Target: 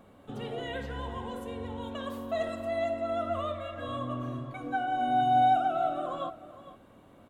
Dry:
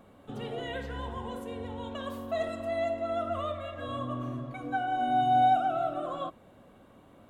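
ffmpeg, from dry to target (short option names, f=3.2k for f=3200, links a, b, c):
-af "aecho=1:1:456:0.178"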